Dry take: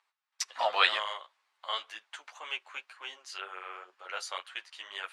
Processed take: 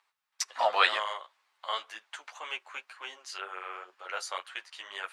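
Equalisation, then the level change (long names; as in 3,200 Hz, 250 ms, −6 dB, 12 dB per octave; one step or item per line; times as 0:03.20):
dynamic equaliser 3,200 Hz, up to −5 dB, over −47 dBFS, Q 1.2
+3.0 dB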